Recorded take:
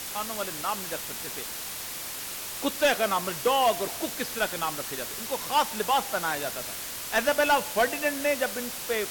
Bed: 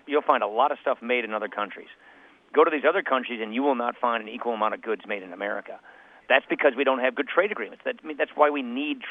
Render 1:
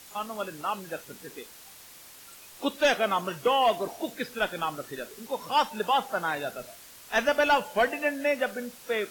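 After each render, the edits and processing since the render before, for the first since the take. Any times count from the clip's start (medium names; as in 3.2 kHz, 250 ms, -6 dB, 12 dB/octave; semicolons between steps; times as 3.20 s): noise print and reduce 13 dB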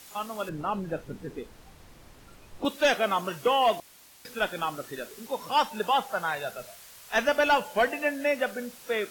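0.49–2.65 s: tilt EQ -4 dB/octave; 3.80–4.25 s: room tone; 6.01–7.15 s: peaking EQ 290 Hz -13 dB 0.48 oct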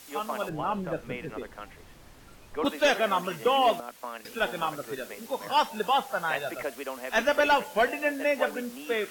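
add bed -14 dB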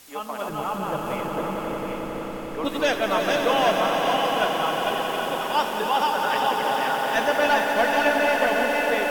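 backward echo that repeats 388 ms, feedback 59%, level -3 dB; echo with a slow build-up 90 ms, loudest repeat 5, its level -9 dB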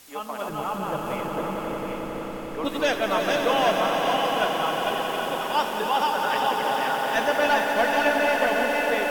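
trim -1 dB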